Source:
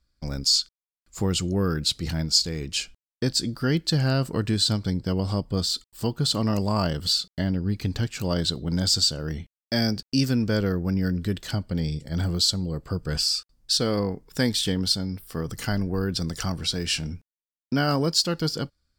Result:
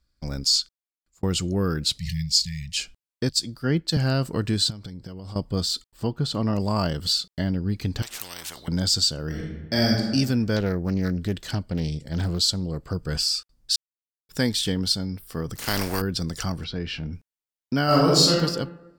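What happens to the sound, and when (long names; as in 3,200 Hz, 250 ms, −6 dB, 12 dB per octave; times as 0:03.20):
0:00.60–0:01.23: fade out
0:01.98–0:02.77: linear-phase brick-wall band-stop 200–1,700 Hz
0:03.29–0:03.97: multiband upward and downward expander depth 100%
0:04.70–0:05.36: downward compressor 12 to 1, threshold −33 dBFS
0:05.87–0:06.60: high-shelf EQ 4,100 Hz −12 dB
0:08.02–0:08.68: every bin compressed towards the loudest bin 10 to 1
0:09.26–0:10.00: thrown reverb, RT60 1.2 s, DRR −1.5 dB
0:10.56–0:12.94: highs frequency-modulated by the lows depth 0.24 ms
0:13.76–0:14.29: silence
0:15.55–0:16.00: compressing power law on the bin magnitudes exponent 0.43
0:16.64–0:17.13: high-frequency loss of the air 290 metres
0:17.84–0:18.34: thrown reverb, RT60 1 s, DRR −5 dB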